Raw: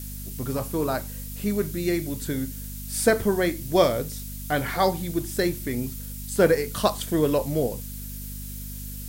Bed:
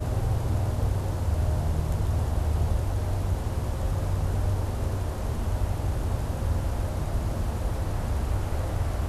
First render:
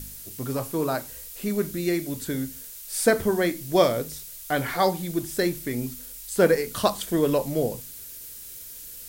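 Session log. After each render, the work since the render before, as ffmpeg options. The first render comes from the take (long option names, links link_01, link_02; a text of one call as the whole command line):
ffmpeg -i in.wav -af "bandreject=frequency=50:width_type=h:width=4,bandreject=frequency=100:width_type=h:width=4,bandreject=frequency=150:width_type=h:width=4,bandreject=frequency=200:width_type=h:width=4,bandreject=frequency=250:width_type=h:width=4" out.wav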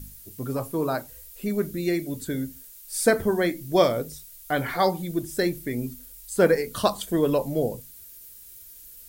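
ffmpeg -i in.wav -af "afftdn=noise_reduction=9:noise_floor=-41" out.wav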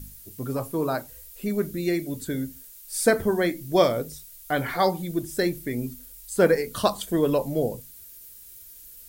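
ffmpeg -i in.wav -af anull out.wav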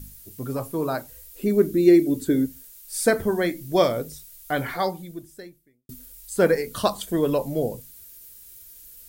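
ffmpeg -i in.wav -filter_complex "[0:a]asettb=1/sr,asplit=3[link_01][link_02][link_03];[link_01]atrim=end=1.324[link_04];[link_02]atrim=start=1.32:end=2.46,asetpts=PTS-STARTPTS,afade=type=in:duration=0.004:curve=qsin,afade=type=out:start_time=1.136:duration=0.004:curve=qsin,equalizer=frequency=330:width=1.5:gain=12[link_05];[link_03]atrim=start=2.456[link_06];[link_04][link_05]acrossfade=duration=0.004:curve1=hsin:curve2=qsin[link_07];[link_07][link_06]acrossfade=duration=0.004:curve1=qsin:curve2=hsin,asplit=2[link_08][link_09];[link_08]atrim=end=5.89,asetpts=PTS-STARTPTS,afade=type=out:start_time=4.63:duration=1.26:curve=qua[link_10];[link_09]atrim=start=5.89,asetpts=PTS-STARTPTS,afade=type=in:duration=0.004:curve=hsin[link_11];[link_10][link_11]concat=n=2:v=0:a=1" out.wav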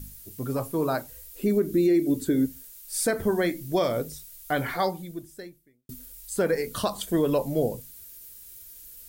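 ffmpeg -i in.wav -af "alimiter=limit=-14.5dB:level=0:latency=1:release=134" out.wav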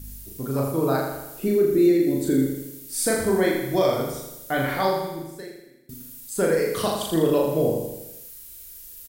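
ffmpeg -i in.wav -filter_complex "[0:a]asplit=2[link_01][link_02];[link_02]adelay=37,volume=-2dB[link_03];[link_01][link_03]amix=inputs=2:normalize=0,asplit=2[link_04][link_05];[link_05]aecho=0:1:81|162|243|324|405|486|567:0.531|0.297|0.166|0.0932|0.0522|0.0292|0.0164[link_06];[link_04][link_06]amix=inputs=2:normalize=0" out.wav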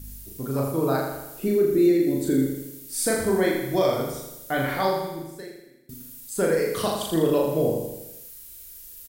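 ffmpeg -i in.wav -af "volume=-1dB" out.wav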